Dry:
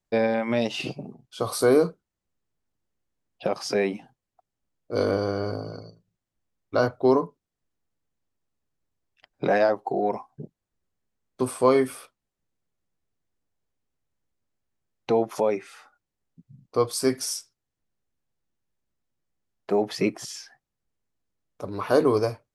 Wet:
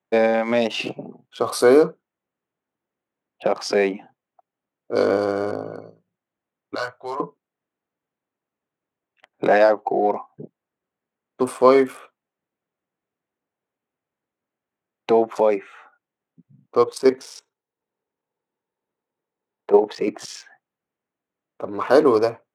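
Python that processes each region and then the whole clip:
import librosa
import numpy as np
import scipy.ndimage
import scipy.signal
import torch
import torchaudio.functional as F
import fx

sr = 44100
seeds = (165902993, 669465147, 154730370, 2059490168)

y = fx.chain(x, sr, fx.tone_stack(knobs='10-0-10'),
    fx.doubler(ms=18.0, db=-2.5), at=(6.75, 7.2))
y = fx.chain(y, sr, fx.high_shelf(hz=9600.0, db=-6.0),
    fx.level_steps(step_db=10),
    fx.small_body(hz=(450.0, 890.0, 3800.0), ring_ms=25, db=9), at=(16.84, 20.08))
y = fx.wiener(y, sr, points=9)
y = scipy.signal.sosfilt(scipy.signal.bessel(2, 280.0, 'highpass', norm='mag', fs=sr, output='sos'), y)
y = fx.high_shelf(y, sr, hz=9800.0, db=-10.0)
y = y * librosa.db_to_amplitude(6.5)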